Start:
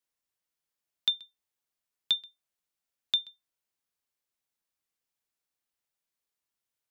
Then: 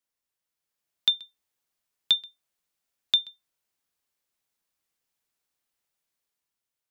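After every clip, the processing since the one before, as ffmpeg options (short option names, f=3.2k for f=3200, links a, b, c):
-af "dynaudnorm=f=140:g=11:m=5dB"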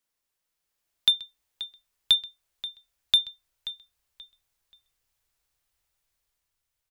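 -filter_complex "[0:a]asubboost=boost=10.5:cutoff=68,asplit=2[a][b];[b]asoftclip=type=hard:threshold=-25dB,volume=-4.5dB[c];[a][c]amix=inputs=2:normalize=0,asplit=2[d][e];[e]adelay=531,lowpass=f=4.8k:p=1,volume=-13.5dB,asplit=2[f][g];[g]adelay=531,lowpass=f=4.8k:p=1,volume=0.31,asplit=2[h][i];[i]adelay=531,lowpass=f=4.8k:p=1,volume=0.31[j];[d][f][h][j]amix=inputs=4:normalize=0"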